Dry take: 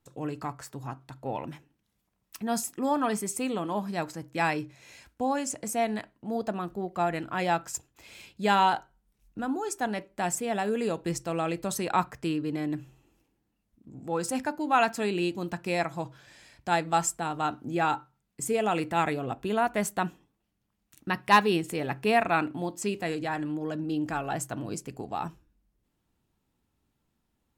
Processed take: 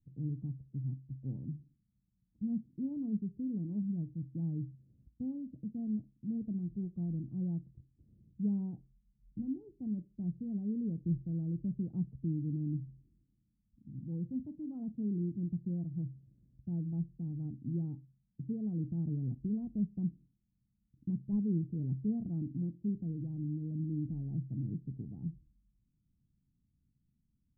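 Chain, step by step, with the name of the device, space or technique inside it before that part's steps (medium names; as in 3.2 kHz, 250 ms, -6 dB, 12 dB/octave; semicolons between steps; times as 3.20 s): the neighbour's flat through the wall (low-pass 230 Hz 24 dB/octave; peaking EQ 140 Hz +4.5 dB 0.58 oct)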